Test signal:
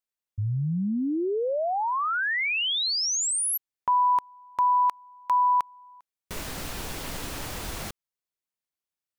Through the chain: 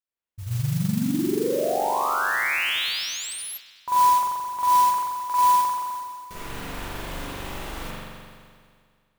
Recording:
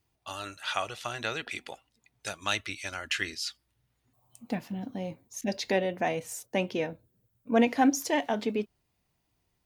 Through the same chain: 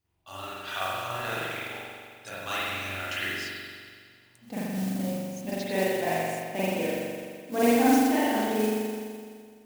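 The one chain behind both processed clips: spring tank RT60 2 s, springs 42 ms, chirp 55 ms, DRR -10 dB; modulation noise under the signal 15 dB; gain -8 dB

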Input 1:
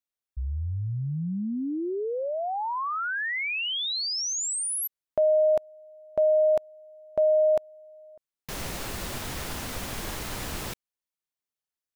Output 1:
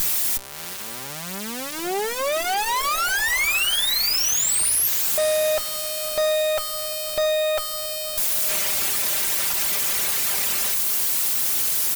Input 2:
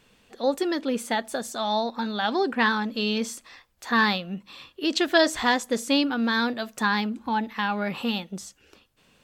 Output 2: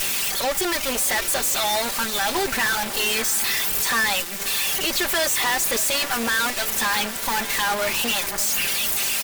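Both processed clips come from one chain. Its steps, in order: switching spikes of -15 dBFS; reverb removal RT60 0.92 s; HPF 460 Hz 12 dB/oct; comb 5.1 ms, depth 66%; dynamic EQ 2200 Hz, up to +5 dB, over -39 dBFS, Q 1.6; in parallel at -1.5 dB: negative-ratio compressor -25 dBFS; on the sum: soft clip -18 dBFS; on a send: diffused feedback echo 0.602 s, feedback 51%, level -14.5 dB; on the sum: added harmonics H 8 -11 dB, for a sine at -14.5 dBFS

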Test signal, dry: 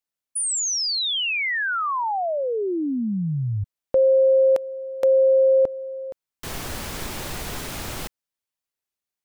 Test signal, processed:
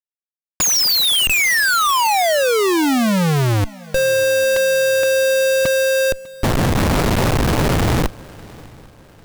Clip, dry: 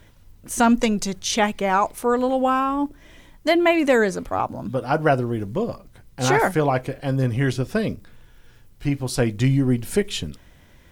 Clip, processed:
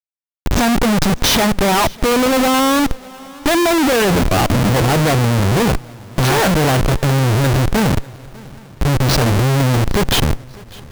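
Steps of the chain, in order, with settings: steep low-pass 5900 Hz 36 dB/oct; treble ducked by the level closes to 2400 Hz, closed at -14 dBFS; bell 130 Hz +6 dB 1.1 oct; notch 2700 Hz, Q 8.2; Schmitt trigger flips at -32.5 dBFS; swung echo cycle 0.798 s, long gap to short 3:1, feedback 40%, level -23 dB; gain +7 dB

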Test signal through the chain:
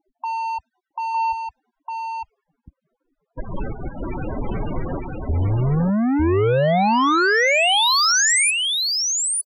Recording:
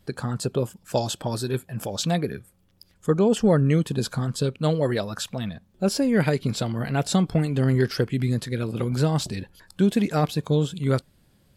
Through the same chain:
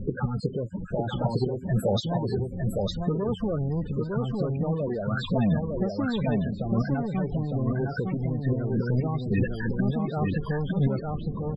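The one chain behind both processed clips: flipped gate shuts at -17 dBFS, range -25 dB; bell 78 Hz -4 dB 1.4 oct; power-law curve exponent 0.35; loudest bins only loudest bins 16; low-pass opened by the level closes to 390 Hz, open at -19.5 dBFS; echo 0.906 s -3 dB

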